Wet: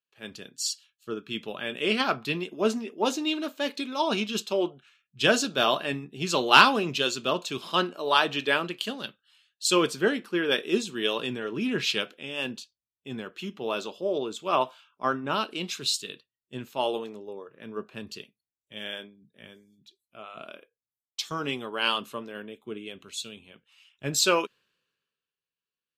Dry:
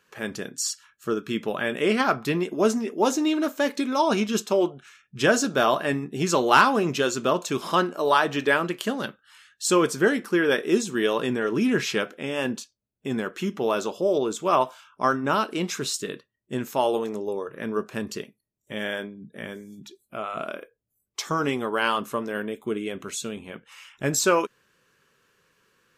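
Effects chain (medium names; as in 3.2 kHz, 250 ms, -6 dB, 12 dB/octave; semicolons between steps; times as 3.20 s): high-order bell 3.4 kHz +9 dB 1.1 oct; three bands expanded up and down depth 70%; trim -6 dB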